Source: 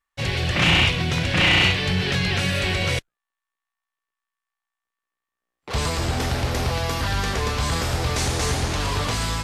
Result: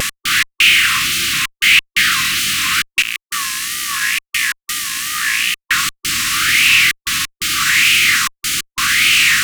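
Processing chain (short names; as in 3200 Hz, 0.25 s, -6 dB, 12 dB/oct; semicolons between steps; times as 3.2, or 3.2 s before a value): per-bin compression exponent 0.4; step gate "x..xx..xxxxxxxxx" 176 bpm -60 dB; upward compressor, threshold -27 dBFS; tilt +4.5 dB/oct; fuzz box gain 38 dB, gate -35 dBFS; brick-wall FIR band-stop 350–1100 Hz; wow and flutter 120 cents; maximiser +13.5 dB; LFO bell 0.82 Hz 610–2600 Hz +14 dB; gain -12.5 dB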